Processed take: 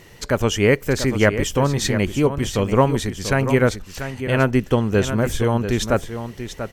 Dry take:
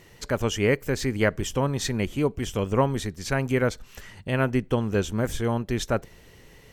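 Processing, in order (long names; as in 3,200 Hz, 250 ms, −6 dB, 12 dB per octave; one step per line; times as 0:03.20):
single-tap delay 689 ms −10 dB
level +6 dB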